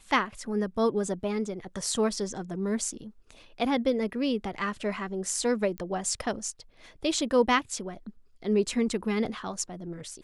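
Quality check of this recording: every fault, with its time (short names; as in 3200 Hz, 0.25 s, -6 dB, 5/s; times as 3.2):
5.78 pop -24 dBFS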